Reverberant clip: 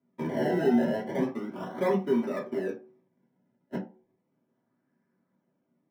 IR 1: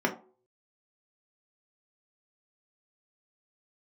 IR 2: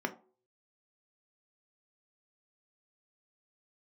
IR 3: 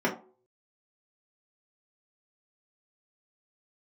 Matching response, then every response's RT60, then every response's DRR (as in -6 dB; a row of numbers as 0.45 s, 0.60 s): 3; no single decay rate, no single decay rate, no single decay rate; -0.5 dB, 4.5 dB, -5.5 dB